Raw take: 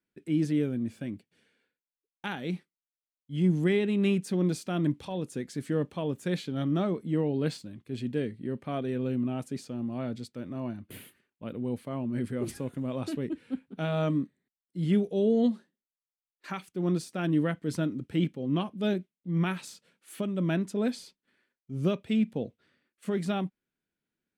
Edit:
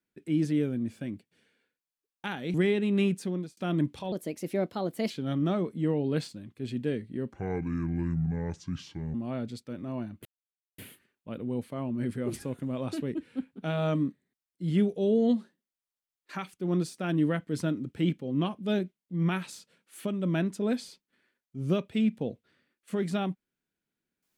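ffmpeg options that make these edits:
-filter_complex "[0:a]asplit=8[a][b][c][d][e][f][g][h];[a]atrim=end=2.542[i];[b]atrim=start=3.598:end=4.63,asetpts=PTS-STARTPTS,afade=t=out:st=0.612:d=0.42[j];[c]atrim=start=4.63:end=5.184,asetpts=PTS-STARTPTS,afade=t=in:d=0.004:c=hsin[k];[d]atrim=start=5.18:end=6.4,asetpts=PTS-STARTPTS,asetrate=54684,aresample=44100[l];[e]atrim=start=6.396:end=8.624[m];[f]atrim=start=8.62:end=9.82,asetpts=PTS-STARTPTS,asetrate=29106,aresample=44100[n];[g]atrim=start=9.816:end=10.93,asetpts=PTS-STARTPTS,afade=t=out:st=1.11:d=0.004:c=hsin,apad=pad_dur=0.53[o];[h]atrim=start=10.93,asetpts=PTS-STARTPTS,afade=t=in:d=0.004:c=hsin[p];[j][k]concat=n=2:v=0:a=1[q];[i][q]acrossfade=d=0.004:c1=hsin:c2=hsin[r];[r][l]acrossfade=d=0.004:c1=hsin:c2=hsin[s];[s][m]acrossfade=d=0.004:c1=hsin:c2=hsin[t];[t][n]acrossfade=d=0.004:c1=hsin:c2=hsin[u];[o][p]concat=n=2:v=0:a=1[v];[u][v]acrossfade=d=0.004:c1=hsin:c2=hsin"

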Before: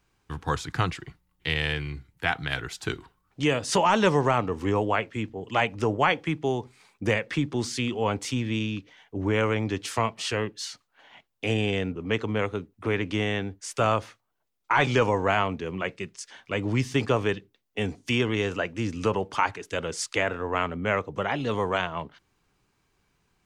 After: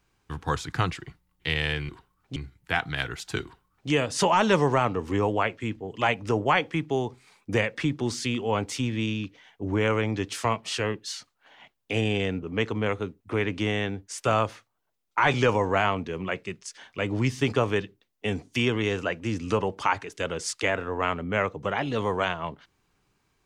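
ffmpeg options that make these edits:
-filter_complex "[0:a]asplit=3[a][b][c];[a]atrim=end=1.892[d];[b]atrim=start=2.958:end=3.432[e];[c]atrim=start=1.888[f];[d][e]acrossfade=d=0.004:c1=hsin:c2=hsin[g];[g][f]acrossfade=d=0.004:c1=hsin:c2=hsin"

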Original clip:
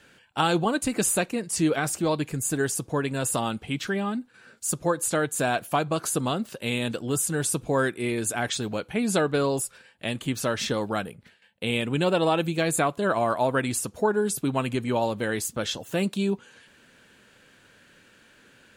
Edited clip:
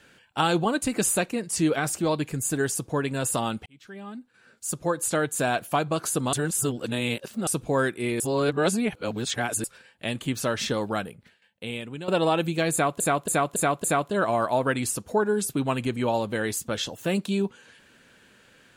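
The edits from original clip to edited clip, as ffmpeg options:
-filter_complex "[0:a]asplit=11[a][b][c][d][e][f][g][h][i][j][k];[a]atrim=end=3.66,asetpts=PTS-STARTPTS,afade=t=out:st=3.656:d=0.004:c=hsin[l];[b]atrim=start=3.66:end=6.332,asetpts=PTS-STARTPTS,afade=t=in:d=1.45[m];[c]atrim=start=6.328:end=7.472,asetpts=PTS-STARTPTS,areverse[n];[d]atrim=start=7.468:end=8.202[o];[e]atrim=start=8.198:end=9.642,asetpts=PTS-STARTPTS,areverse[p];[f]atrim=start=9.638:end=12.08,asetpts=PTS-STARTPTS,afade=t=out:st=1.292:d=1.15:silence=0.199526[q];[g]atrim=start=12.08:end=13.002,asetpts=PTS-STARTPTS,afade=t=in:d=0.004:c=hsin:silence=0.199526[r];[h]atrim=start=12.718:end=13.002[s];[i]atrim=start=12.718:end=13.002[t];[j]atrim=start=12.718:end=13.002[u];[k]atrim=start=12.718[v];[l][m]concat=n=2:v=0:a=1[w];[w][n]acrossfade=d=0.004:c1=hsin:c2=hsin[x];[x][o]acrossfade=d=0.004:c1=hsin:c2=hsin[y];[y][p]acrossfade=d=0.004:c1=hsin:c2=hsin[z];[q][r]concat=n=2:v=0:a=1[aa];[z][aa]acrossfade=d=0.004:c1=hsin:c2=hsin[ab];[ab][s]acrossfade=d=0.004:c1=hsin:c2=hsin[ac];[ac][t]acrossfade=d=0.004:c1=hsin:c2=hsin[ad];[ad][u]acrossfade=d=0.004:c1=hsin:c2=hsin[ae];[ae][v]acrossfade=d=0.004:c1=hsin:c2=hsin"

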